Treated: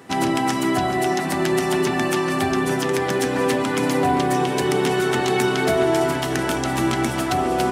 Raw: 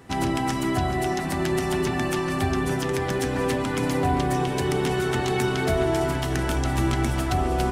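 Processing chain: high-pass 180 Hz 12 dB/octave; trim +5 dB

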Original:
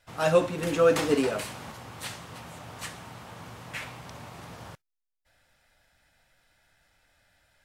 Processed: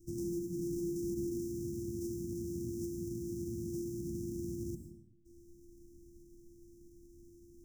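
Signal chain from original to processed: sorted samples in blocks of 128 samples; Chebyshev band-stop 350–5700 Hz, order 5; treble shelf 4.9 kHz -9 dB; compression 2.5:1, threshold -50 dBFS, peak gain reduction 20.5 dB; peak limiter -41.5 dBFS, peak gain reduction 10 dB; plate-style reverb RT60 0.86 s, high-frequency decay 0.55×, pre-delay 90 ms, DRR 6 dB; trim +11 dB

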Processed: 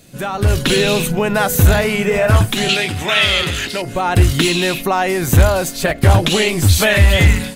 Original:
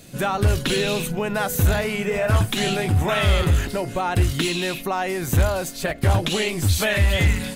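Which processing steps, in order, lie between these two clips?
2.69–3.82 s: frequency weighting D; level rider gain up to 12 dB; trim -1 dB

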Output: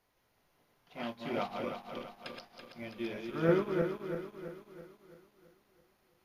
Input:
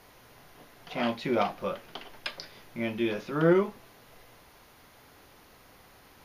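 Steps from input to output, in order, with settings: backward echo that repeats 166 ms, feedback 78%, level -3.5 dB; upward expansion 1.5:1, over -47 dBFS; trim -5.5 dB

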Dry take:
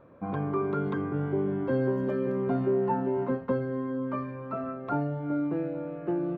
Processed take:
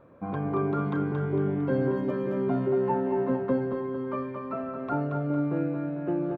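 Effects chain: feedback delay 227 ms, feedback 48%, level -5 dB

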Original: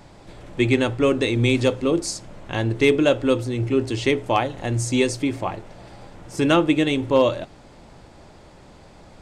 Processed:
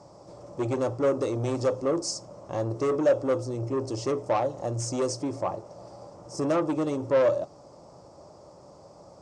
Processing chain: high-order bell 2.4 kHz -15 dB; saturation -18.5 dBFS, distortion -10 dB; cabinet simulation 110–8400 Hz, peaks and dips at 230 Hz -7 dB, 570 Hz +8 dB, 1.2 kHz +5 dB, 5.4 kHz +6 dB; trim -3.5 dB

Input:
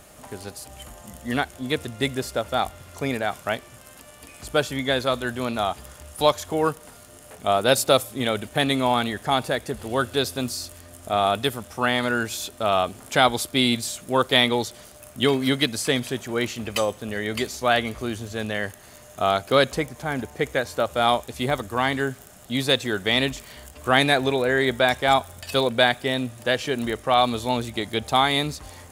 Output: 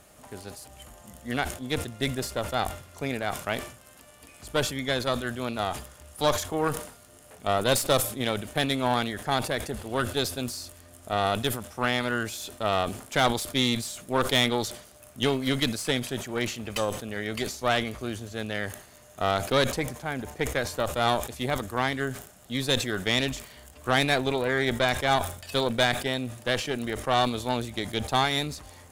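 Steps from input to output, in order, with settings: Chebyshev shaper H 6 -18 dB, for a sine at -3 dBFS; decay stretcher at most 100 dB/s; trim -6 dB

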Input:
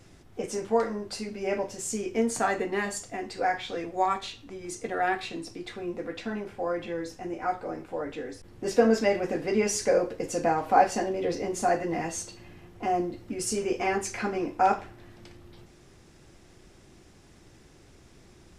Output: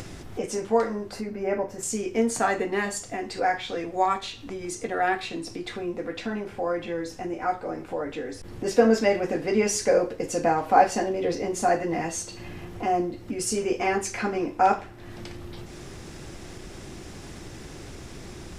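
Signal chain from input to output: 1.11–1.83 s: high-order bell 5.1 kHz -11 dB 2.3 oct; upward compressor, threshold -31 dBFS; trim +2.5 dB

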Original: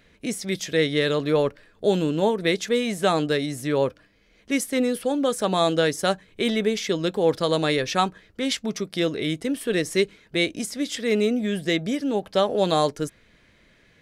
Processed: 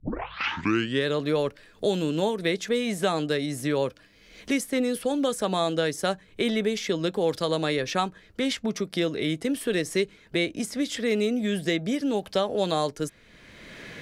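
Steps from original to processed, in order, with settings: tape start-up on the opening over 1.06 s; three bands compressed up and down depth 70%; trim -3.5 dB

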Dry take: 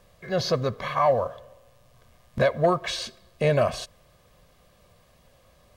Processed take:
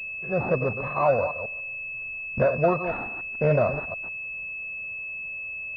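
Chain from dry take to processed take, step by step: chunks repeated in reverse 146 ms, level -9 dB; class-D stage that switches slowly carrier 2.6 kHz

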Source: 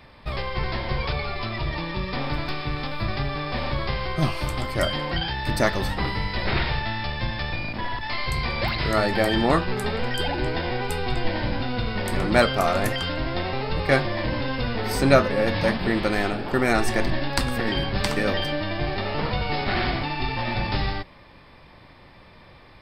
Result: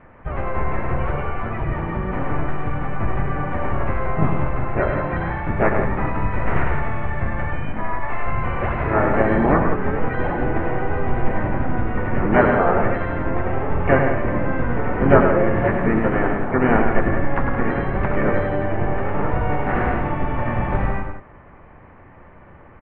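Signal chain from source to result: steep low-pass 1.9 kHz 36 dB/octave; harmony voices -7 st -6 dB, -4 st -11 dB, +4 st -9 dB; multi-tap echo 102/172 ms -5.5/-9 dB; trim +1.5 dB

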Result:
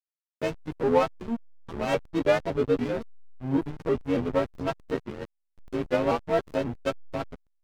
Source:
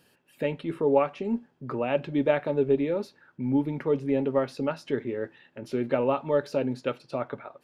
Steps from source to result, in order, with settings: partials quantised in pitch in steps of 3 st; hysteresis with a dead band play -22.5 dBFS; vibrato with a chosen wave saw up 3.6 Hz, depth 160 cents; trim +1.5 dB

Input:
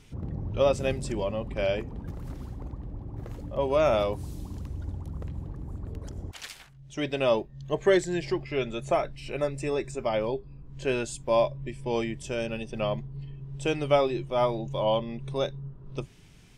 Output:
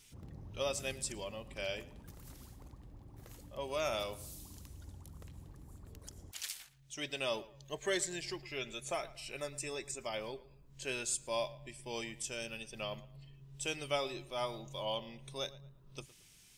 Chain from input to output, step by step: pre-emphasis filter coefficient 0.9; on a send: tape echo 113 ms, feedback 34%, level -17 dB, low-pass 3.2 kHz; on the sum: trim +4 dB

